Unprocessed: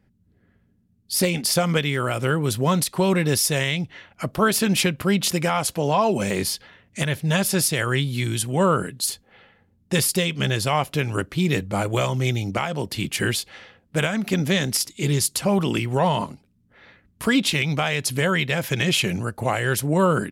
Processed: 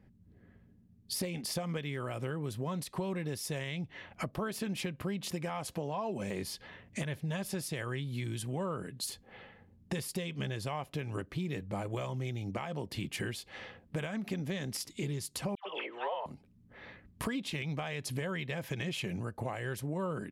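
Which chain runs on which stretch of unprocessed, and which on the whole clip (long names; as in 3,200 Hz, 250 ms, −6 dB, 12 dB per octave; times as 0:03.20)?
0:15.55–0:16.26: Chebyshev band-pass filter 500–3,400 Hz, order 3 + all-pass dispersion lows, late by 112 ms, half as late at 1,200 Hz
whole clip: high-shelf EQ 2,900 Hz −8 dB; notch filter 1,400 Hz, Q 11; downward compressor 5 to 1, threshold −37 dBFS; level +1.5 dB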